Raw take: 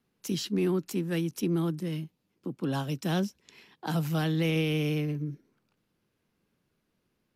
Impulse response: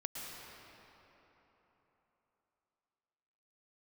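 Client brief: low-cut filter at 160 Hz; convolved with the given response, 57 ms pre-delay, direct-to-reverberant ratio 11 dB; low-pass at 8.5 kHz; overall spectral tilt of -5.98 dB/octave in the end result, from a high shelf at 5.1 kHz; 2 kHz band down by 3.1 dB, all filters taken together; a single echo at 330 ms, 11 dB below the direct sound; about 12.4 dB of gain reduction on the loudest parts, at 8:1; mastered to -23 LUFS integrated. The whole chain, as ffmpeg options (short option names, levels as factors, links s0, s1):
-filter_complex "[0:a]highpass=160,lowpass=8500,equalizer=f=2000:t=o:g=-3.5,highshelf=f=5100:g=-3.5,acompressor=threshold=0.0126:ratio=8,aecho=1:1:330:0.282,asplit=2[s0][s1];[1:a]atrim=start_sample=2205,adelay=57[s2];[s1][s2]afir=irnorm=-1:irlink=0,volume=0.266[s3];[s0][s3]amix=inputs=2:normalize=0,volume=8.91"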